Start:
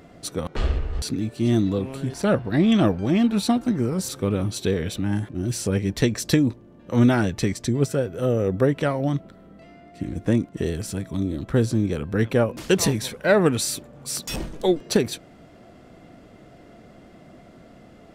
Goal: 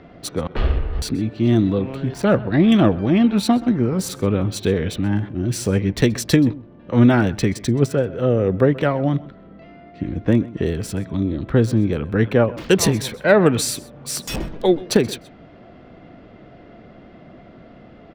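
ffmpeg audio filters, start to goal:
-filter_complex "[0:a]acrossover=split=400|1400|4300[a][b][c][d];[d]aeval=exprs='sgn(val(0))*max(abs(val(0))-0.00841,0)':c=same[e];[a][b][c][e]amix=inputs=4:normalize=0,asplit=2[f][g];[g]adelay=128.3,volume=-20dB,highshelf=f=4k:g=-2.89[h];[f][h]amix=inputs=2:normalize=0,volume=4dB"

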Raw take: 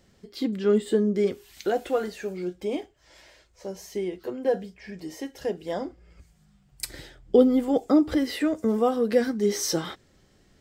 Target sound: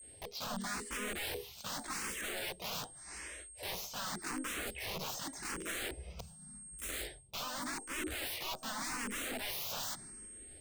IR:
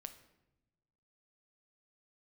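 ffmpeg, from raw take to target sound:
-filter_complex "[0:a]agate=range=-33dB:threshold=-54dB:ratio=3:detection=peak,areverse,acompressor=threshold=-35dB:ratio=16,areverse,aeval=exprs='(mod(106*val(0)+1,2)-1)/106':c=same,asplit=2[a][b];[b]asetrate=52444,aresample=44100,atempo=0.840896,volume=-2dB[c];[a][c]amix=inputs=2:normalize=0,aeval=exprs='val(0)+0.00178*sin(2*PI*8500*n/s)':c=same,asplit=2[d][e];[e]afreqshift=0.86[f];[d][f]amix=inputs=2:normalize=1,volume=6.5dB"

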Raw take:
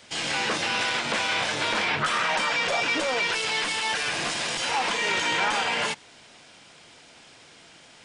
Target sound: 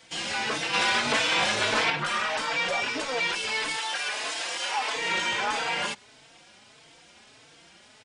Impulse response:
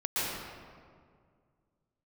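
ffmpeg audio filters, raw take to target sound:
-filter_complex "[0:a]asettb=1/sr,asplit=3[a][b][c];[a]atrim=end=0.734[d];[b]atrim=start=0.73:end=1.9,asetpts=PTS-STARTPTS,afade=t=in:d=0.004:c=qsin,afade=t=out:st=1.166:d=0.004:c=qsin,acontrast=27[e];[c]atrim=start=1.896[f];[d][e]acrossfade=d=0.004:c1=hsin:c2=qsin[g];[g][f]acrossfade=d=0.004:c1=qsin:c2=hsin,asettb=1/sr,asplit=3[h][i][j];[h]atrim=end=3.764[k];[i]atrim=start=3.76:end=4.96,asetpts=PTS-STARTPTS,afade=t=in:d=0.004:c=qsin,afade=t=out:st=1.196:d=0.004:c=qsin,highpass=430[l];[j]atrim=start=4.956[m];[k][l]acrossfade=d=0.004:c1=hsin:c2=qsin[n];[n][m]acrossfade=d=0.004:c1=qsin:c2=hsin,asplit=2[o][p];[p]adelay=4,afreqshift=1.6[q];[o][q]amix=inputs=2:normalize=1"

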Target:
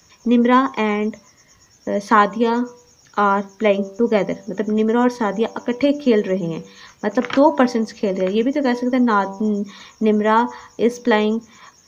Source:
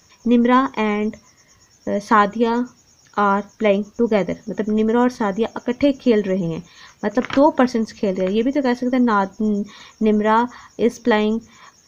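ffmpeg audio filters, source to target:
-filter_complex "[0:a]bandreject=f=97.3:t=h:w=4,bandreject=f=194.6:t=h:w=4,bandreject=f=291.9:t=h:w=4,bandreject=f=389.2:t=h:w=4,bandreject=f=486.5:t=h:w=4,bandreject=f=583.8:t=h:w=4,bandreject=f=681.1:t=h:w=4,bandreject=f=778.4:t=h:w=4,bandreject=f=875.7:t=h:w=4,bandreject=f=973:t=h:w=4,bandreject=f=1.0703k:t=h:w=4,bandreject=f=1.1676k:t=h:w=4,acrossover=split=140|820|1100[a][b][c][d];[a]acompressor=threshold=-50dB:ratio=6[e];[e][b][c][d]amix=inputs=4:normalize=0,volume=1dB"

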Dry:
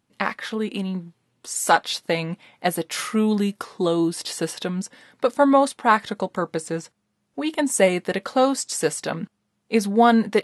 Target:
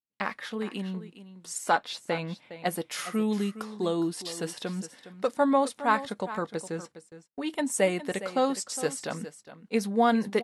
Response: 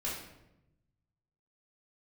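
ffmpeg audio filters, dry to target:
-filter_complex "[0:a]asplit=2[a][b];[b]aecho=0:1:411:0.2[c];[a][c]amix=inputs=2:normalize=0,agate=range=-27dB:threshold=-45dB:ratio=16:detection=peak,asettb=1/sr,asplit=3[d][e][f];[d]atrim=end=1.584[g];[e]atrim=start=1.58:end=2.66,asetpts=PTS-STARTPTS,afade=t=in:d=0.004:c=qsin,afade=t=out:st=1.076:d=0.004:c=qsin,aemphasis=mode=reproduction:type=cd[h];[f]atrim=start=2.656[i];[g][h]acrossfade=d=0.004:c1=hsin:c2=qsin[j];[j][i]acrossfade=d=0.004:c1=qsin:c2=hsin,volume=-7dB"

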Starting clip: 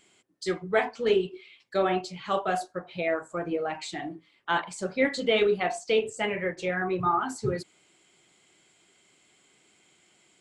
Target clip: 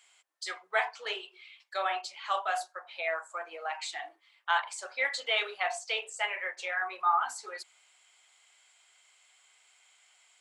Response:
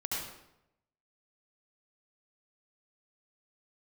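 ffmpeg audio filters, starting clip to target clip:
-af "highpass=f=750:w=0.5412,highpass=f=750:w=1.3066"

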